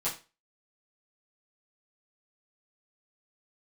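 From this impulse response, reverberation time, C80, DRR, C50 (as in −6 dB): 0.30 s, 15.0 dB, −9.5 dB, 9.5 dB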